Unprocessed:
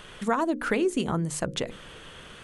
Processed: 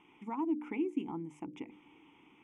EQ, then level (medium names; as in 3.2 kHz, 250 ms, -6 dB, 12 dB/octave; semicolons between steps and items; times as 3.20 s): vowel filter u; Butterworth band-stop 4.3 kHz, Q 2; 0.0 dB